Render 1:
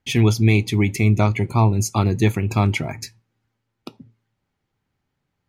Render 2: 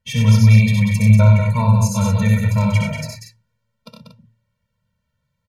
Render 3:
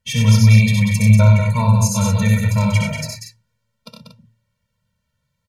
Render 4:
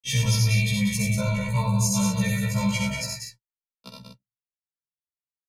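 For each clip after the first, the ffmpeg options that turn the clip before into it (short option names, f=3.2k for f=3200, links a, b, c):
-filter_complex "[0:a]asplit=2[a][b];[b]aecho=0:1:65|93|125|190|235:0.668|0.631|0.15|0.531|0.335[c];[a][c]amix=inputs=2:normalize=0,afftfilt=real='re*eq(mod(floor(b*sr/1024/220),2),0)':imag='im*eq(mod(floor(b*sr/1024/220),2),0)':win_size=1024:overlap=0.75,volume=1dB"
-af "equalizer=f=7.8k:t=o:w=2.5:g=5.5"
-filter_complex "[0:a]acrossover=split=140|3000[a][b][c];[b]acompressor=threshold=-29dB:ratio=2[d];[a][d][c]amix=inputs=3:normalize=0,agate=range=-43dB:threshold=-42dB:ratio=16:detection=peak,afftfilt=real='re*1.73*eq(mod(b,3),0)':imag='im*1.73*eq(mod(b,3),0)':win_size=2048:overlap=0.75,volume=1dB"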